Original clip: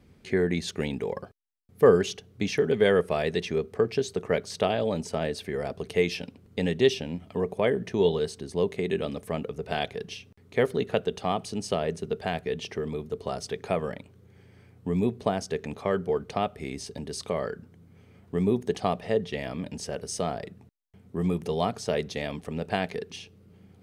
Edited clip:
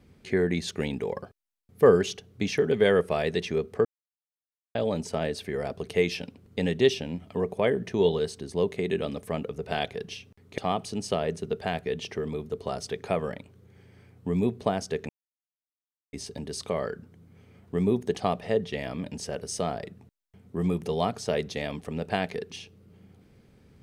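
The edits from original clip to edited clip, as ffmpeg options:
ffmpeg -i in.wav -filter_complex "[0:a]asplit=6[link_01][link_02][link_03][link_04][link_05][link_06];[link_01]atrim=end=3.85,asetpts=PTS-STARTPTS,afade=type=out:start_time=3.846:duration=0.004:curve=hsin[link_07];[link_02]atrim=start=3.85:end=4.75,asetpts=PTS-STARTPTS,volume=0[link_08];[link_03]atrim=start=4.75:end=10.582,asetpts=PTS-STARTPTS,afade=type=in:duration=0.004:curve=hsin[link_09];[link_04]atrim=start=11.178:end=15.69,asetpts=PTS-STARTPTS,afade=type=out:start_time=4.508:duration=0.004:curve=hsin[link_10];[link_05]atrim=start=15.69:end=16.73,asetpts=PTS-STARTPTS,volume=0[link_11];[link_06]atrim=start=16.73,asetpts=PTS-STARTPTS,afade=type=in:duration=0.004:curve=hsin[link_12];[link_07][link_08][link_09]concat=n=3:v=0:a=1[link_13];[link_10][link_11][link_12]concat=n=3:v=0:a=1[link_14];[link_13][link_14]acrossfade=duration=0.004:curve1=hsin:curve2=hsin" out.wav

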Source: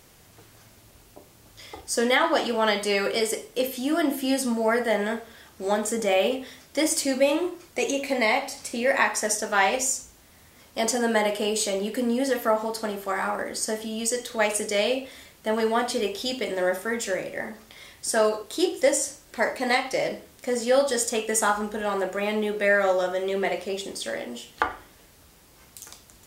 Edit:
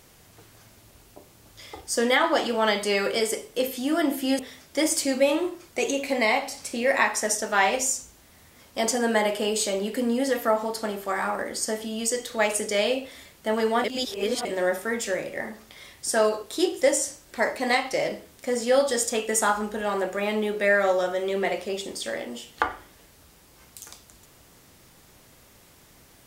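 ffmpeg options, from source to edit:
ffmpeg -i in.wav -filter_complex "[0:a]asplit=4[link_01][link_02][link_03][link_04];[link_01]atrim=end=4.392[link_05];[link_02]atrim=start=6.388:end=15.842[link_06];[link_03]atrim=start=15.838:end=16.452,asetpts=PTS-STARTPTS,areverse[link_07];[link_04]atrim=start=16.448[link_08];[link_05][link_06]acrossfade=duration=0.004:curve1=hsin:curve2=hsin[link_09];[link_09][link_07]acrossfade=duration=0.004:curve1=hsin:curve2=hsin[link_10];[link_10][link_08]acrossfade=duration=0.004:curve1=hsin:curve2=hsin" out.wav

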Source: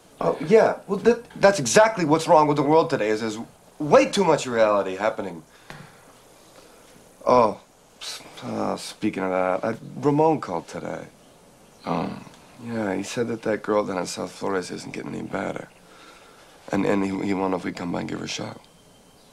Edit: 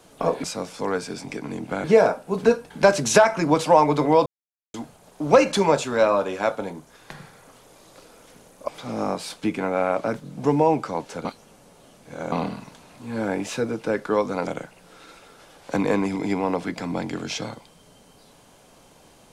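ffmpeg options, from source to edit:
ffmpeg -i in.wav -filter_complex "[0:a]asplit=9[link_01][link_02][link_03][link_04][link_05][link_06][link_07][link_08][link_09];[link_01]atrim=end=0.442[link_10];[link_02]atrim=start=14.058:end=15.462[link_11];[link_03]atrim=start=0.438:end=2.86,asetpts=PTS-STARTPTS,afade=type=out:start_time=2.418:duration=0.004:curve=hsin[link_12];[link_04]atrim=start=2.86:end=3.34,asetpts=PTS-STARTPTS,volume=0[link_13];[link_05]atrim=start=3.34:end=7.282,asetpts=PTS-STARTPTS,afade=type=in:duration=0.004:curve=hsin[link_14];[link_06]atrim=start=8.268:end=10.842[link_15];[link_07]atrim=start=10.838:end=11.912,asetpts=PTS-STARTPTS,areverse[link_16];[link_08]atrim=start=11.908:end=14.062[link_17];[link_09]atrim=start=15.458[link_18];[link_10][link_11]acrossfade=duration=0.004:curve1=hsin:curve2=hsin[link_19];[link_12][link_13][link_14]concat=n=3:v=0:a=1[link_20];[link_19][link_20]acrossfade=duration=0.004:curve1=hsin:curve2=hsin[link_21];[link_21][link_15]acrossfade=duration=0.004:curve1=hsin:curve2=hsin[link_22];[link_22][link_16]acrossfade=duration=0.004:curve1=hsin:curve2=hsin[link_23];[link_23][link_17]acrossfade=duration=0.004:curve1=hsin:curve2=hsin[link_24];[link_24][link_18]acrossfade=duration=0.004:curve1=hsin:curve2=hsin" out.wav

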